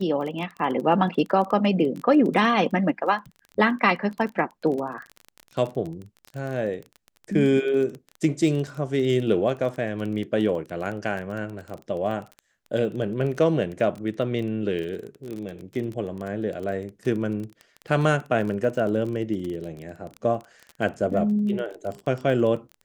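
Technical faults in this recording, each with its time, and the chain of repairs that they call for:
crackle 21/s -30 dBFS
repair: de-click

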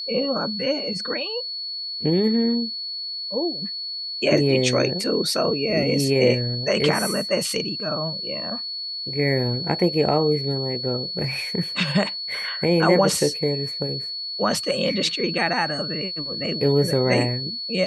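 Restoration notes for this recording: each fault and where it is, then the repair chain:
tone 4400 Hz -28 dBFS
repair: notch 4400 Hz, Q 30

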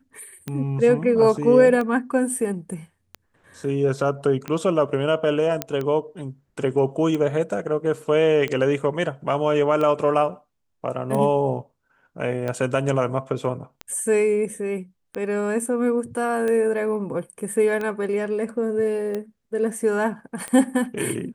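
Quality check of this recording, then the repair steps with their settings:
tick 45 rpm -16 dBFS
5.62 pop -7 dBFS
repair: de-click

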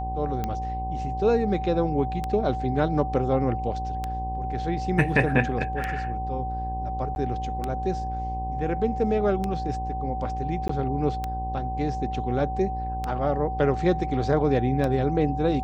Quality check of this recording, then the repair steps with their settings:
buzz 60 Hz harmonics 17 -32 dBFS
tick 33 1/3 rpm -15 dBFS
tone 760 Hz -30 dBFS
7.15–7.16 gap 11 ms
10.68–10.69 gap 14 ms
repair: de-click; de-hum 60 Hz, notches 17; notch 760 Hz, Q 30; interpolate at 7.15, 11 ms; interpolate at 10.68, 14 ms

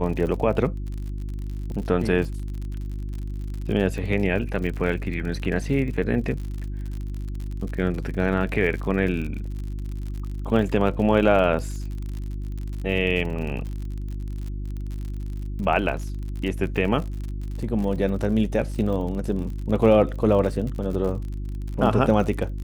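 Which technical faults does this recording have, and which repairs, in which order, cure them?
crackle 58/s -31 dBFS
hum 50 Hz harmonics 7 -30 dBFS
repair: de-click; de-hum 50 Hz, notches 7

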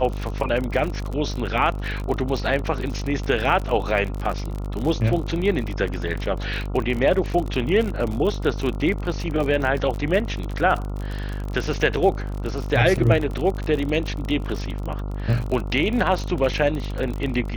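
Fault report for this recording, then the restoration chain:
buzz 50 Hz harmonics 28 -28 dBFS
crackle 44/s -26 dBFS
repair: de-click; de-hum 50 Hz, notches 28

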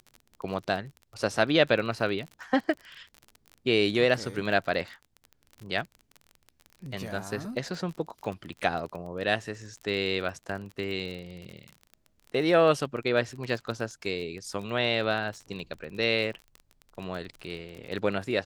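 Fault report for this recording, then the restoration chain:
crackle 32/s -35 dBFS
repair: de-click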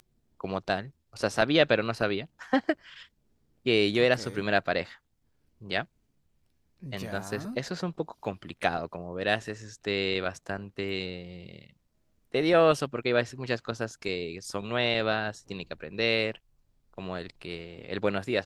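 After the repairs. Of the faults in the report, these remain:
none

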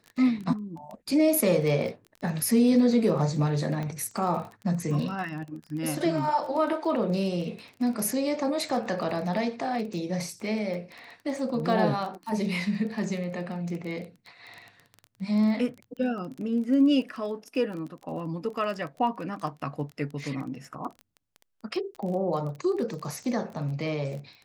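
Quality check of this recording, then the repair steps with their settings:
crackle 21/s -34 dBFS
3.83 pop -22 dBFS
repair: de-click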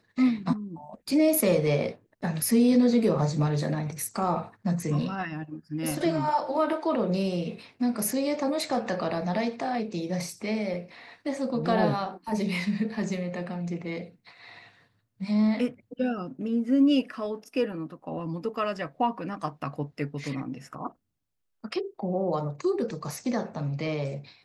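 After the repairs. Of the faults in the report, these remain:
3.83 pop

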